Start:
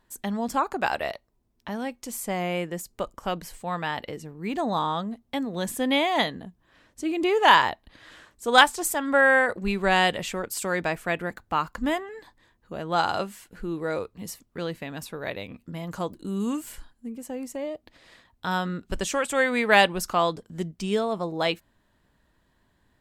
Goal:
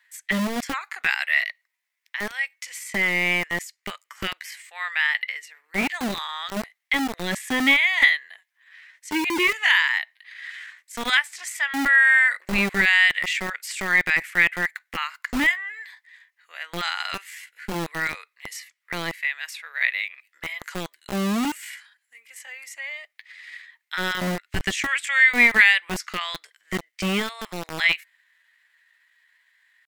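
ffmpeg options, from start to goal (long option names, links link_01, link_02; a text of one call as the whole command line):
ffmpeg -i in.wav -filter_complex "[0:a]acrossover=split=3300|7700[link_01][link_02][link_03];[link_01]acompressor=threshold=-23dB:ratio=4[link_04];[link_02]acompressor=threshold=-38dB:ratio=4[link_05];[link_03]acompressor=threshold=-51dB:ratio=4[link_06];[link_04][link_05][link_06]amix=inputs=3:normalize=0,acrossover=split=380[link_07][link_08];[link_07]acrusher=bits=4:mix=0:aa=0.000001[link_09];[link_08]highpass=frequency=2000:width_type=q:width=5.8[link_10];[link_09][link_10]amix=inputs=2:normalize=0,atempo=0.77,volume=3.5dB" out.wav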